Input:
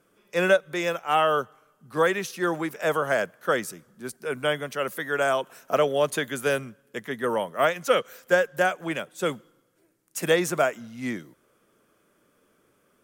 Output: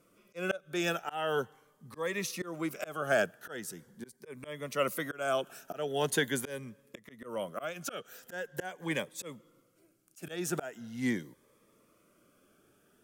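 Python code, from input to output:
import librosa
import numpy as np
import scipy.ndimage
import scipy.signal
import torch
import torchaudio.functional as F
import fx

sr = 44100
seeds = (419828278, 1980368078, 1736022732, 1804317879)

y = fx.auto_swell(x, sr, attack_ms=363.0)
y = fx.notch_cascade(y, sr, direction='rising', hz=0.42)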